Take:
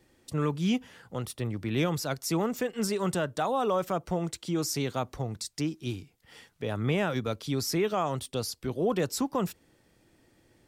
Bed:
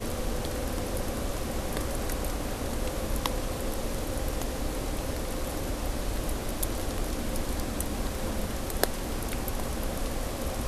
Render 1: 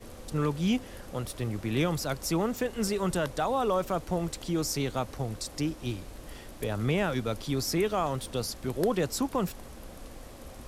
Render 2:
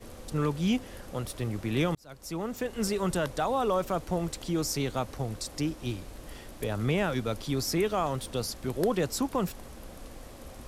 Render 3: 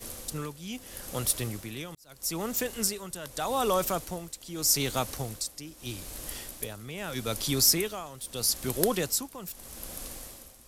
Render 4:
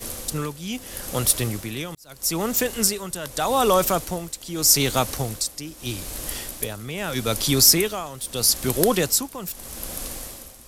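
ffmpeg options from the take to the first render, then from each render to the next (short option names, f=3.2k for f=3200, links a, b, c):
-filter_complex "[1:a]volume=-13.5dB[a];[0:a][a]amix=inputs=2:normalize=0"
-filter_complex "[0:a]asplit=2[a][b];[a]atrim=end=1.95,asetpts=PTS-STARTPTS,afade=t=out:st=1.946:d=0.004:c=hsin[c];[b]atrim=start=1.95,asetpts=PTS-STARTPTS,afade=t=in:d=0.9[d];[c][d]concat=n=2:v=0:a=1"
-af "crystalizer=i=4.5:c=0,tremolo=f=0.8:d=0.82"
-af "volume=8dB,alimiter=limit=-1dB:level=0:latency=1"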